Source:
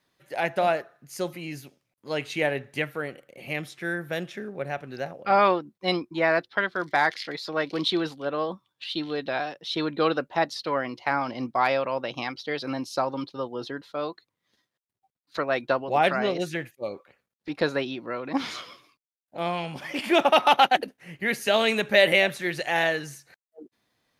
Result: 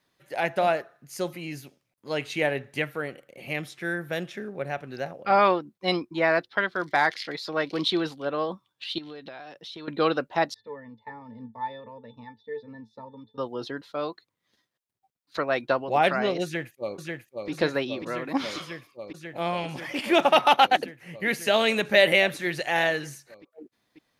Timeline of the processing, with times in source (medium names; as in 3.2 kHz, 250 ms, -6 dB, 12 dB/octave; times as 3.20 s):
8.98–9.88 s: compression, threshold -38 dBFS
10.54–13.38 s: pitch-class resonator A, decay 0.13 s
16.44–17.50 s: echo throw 540 ms, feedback 85%, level -3.5 dB